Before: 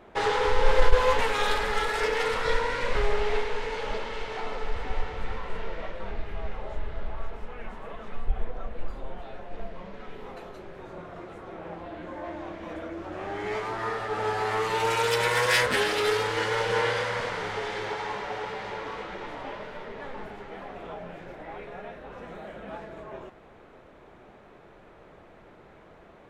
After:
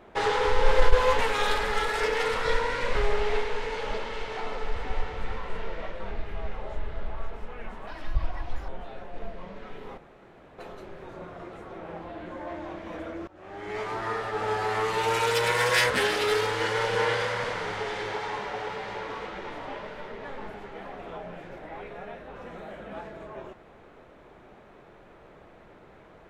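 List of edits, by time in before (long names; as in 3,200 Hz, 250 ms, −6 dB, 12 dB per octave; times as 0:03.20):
0:07.87–0:09.06: play speed 146%
0:10.35: splice in room tone 0.61 s
0:13.04–0:13.70: fade in, from −22 dB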